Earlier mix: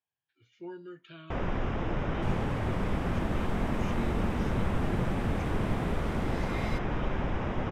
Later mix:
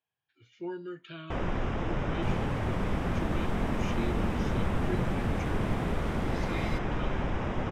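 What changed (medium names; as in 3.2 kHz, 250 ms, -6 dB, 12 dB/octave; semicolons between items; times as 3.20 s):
speech +5.0 dB; first sound: remove distance through air 54 m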